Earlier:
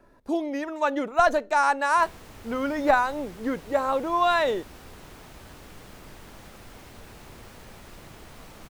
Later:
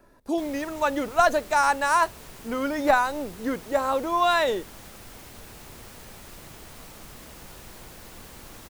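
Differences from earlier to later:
background: entry -1.60 s; master: add high shelf 5300 Hz +9 dB

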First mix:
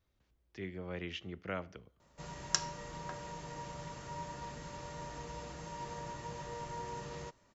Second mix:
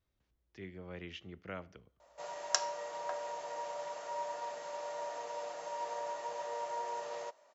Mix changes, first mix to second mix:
speech -4.5 dB; background: add resonant high-pass 630 Hz, resonance Q 3.8

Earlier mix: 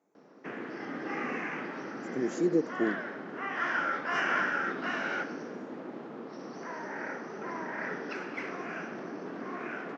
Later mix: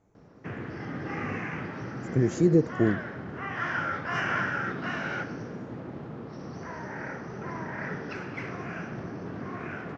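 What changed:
speech +4.5 dB; master: remove HPF 230 Hz 24 dB/oct

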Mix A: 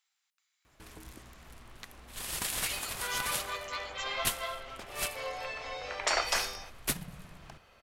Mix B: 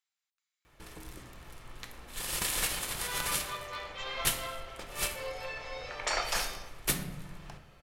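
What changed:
speech -9.5 dB; second sound -5.0 dB; reverb: on, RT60 0.75 s

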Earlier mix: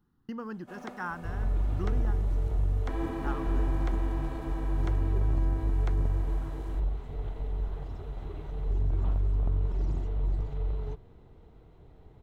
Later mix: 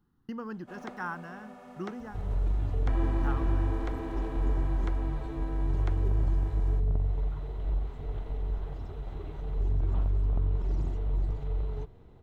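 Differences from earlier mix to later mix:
first sound: add high shelf 8700 Hz -9 dB; second sound: entry +0.90 s

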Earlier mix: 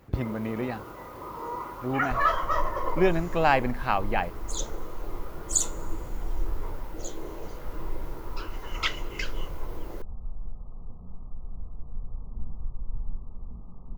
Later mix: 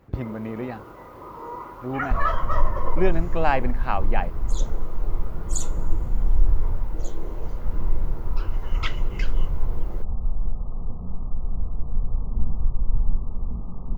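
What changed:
second sound +11.5 dB; master: add high shelf 2900 Hz -7.5 dB

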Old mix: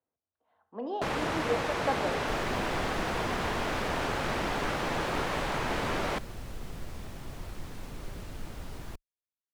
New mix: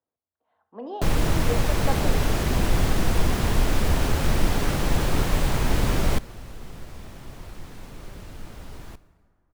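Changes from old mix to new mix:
first sound: remove band-pass 1200 Hz, Q 0.5; second sound: send on

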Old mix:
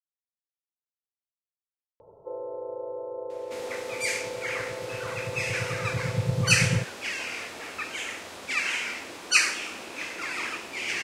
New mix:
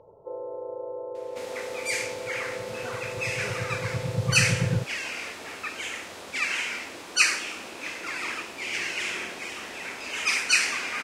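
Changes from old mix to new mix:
speech: unmuted; first sound: entry -2.00 s; second sound: entry -2.15 s

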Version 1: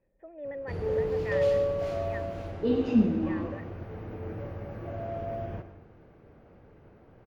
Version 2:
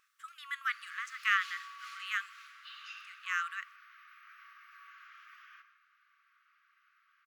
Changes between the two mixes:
speech: remove vocal tract filter e; master: add brick-wall FIR high-pass 1100 Hz

